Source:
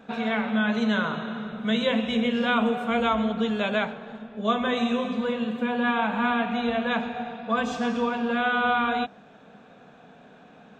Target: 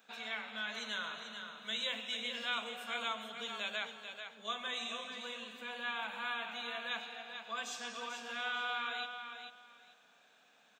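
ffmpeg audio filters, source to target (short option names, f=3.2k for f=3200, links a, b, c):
-af "aderivative,aecho=1:1:440|880|1320:0.398|0.0836|0.0176,volume=1dB"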